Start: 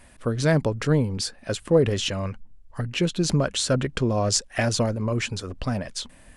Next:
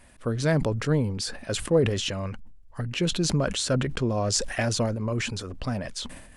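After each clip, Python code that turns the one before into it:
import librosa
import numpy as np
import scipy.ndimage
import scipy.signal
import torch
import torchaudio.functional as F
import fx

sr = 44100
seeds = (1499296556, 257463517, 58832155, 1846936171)

y = fx.sustainer(x, sr, db_per_s=59.0)
y = F.gain(torch.from_numpy(y), -3.0).numpy()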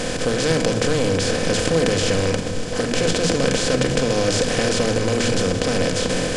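y = fx.bin_compress(x, sr, power=0.2)
y = fx.room_shoebox(y, sr, seeds[0], volume_m3=3100.0, walls='furnished', distance_m=2.0)
y = F.gain(torch.from_numpy(y), -4.5).numpy()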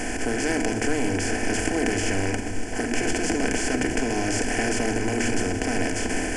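y = fx.fixed_phaser(x, sr, hz=780.0, stages=8)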